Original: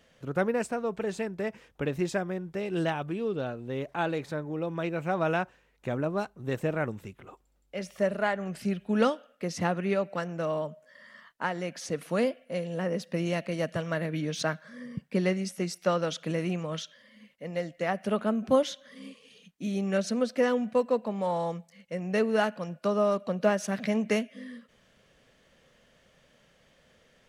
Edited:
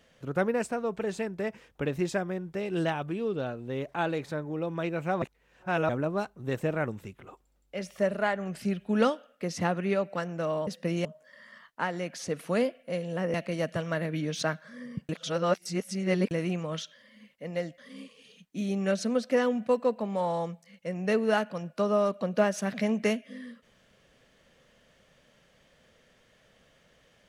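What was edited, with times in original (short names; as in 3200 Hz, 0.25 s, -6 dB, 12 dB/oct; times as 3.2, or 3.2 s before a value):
5.22–5.89 reverse
12.96–13.34 move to 10.67
15.09–16.31 reverse
17.78–18.84 cut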